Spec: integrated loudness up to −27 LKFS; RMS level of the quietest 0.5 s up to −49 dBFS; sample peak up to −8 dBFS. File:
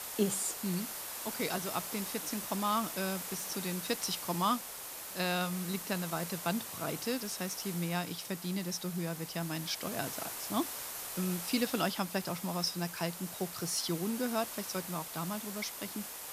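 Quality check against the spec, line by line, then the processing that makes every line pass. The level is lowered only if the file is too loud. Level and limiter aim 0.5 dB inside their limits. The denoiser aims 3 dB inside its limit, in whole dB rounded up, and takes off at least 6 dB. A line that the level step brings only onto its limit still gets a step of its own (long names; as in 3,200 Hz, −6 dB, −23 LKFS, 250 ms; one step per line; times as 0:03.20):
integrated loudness −35.0 LKFS: in spec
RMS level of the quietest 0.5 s −44 dBFS: out of spec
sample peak −17.0 dBFS: in spec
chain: broadband denoise 8 dB, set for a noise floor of −44 dBFS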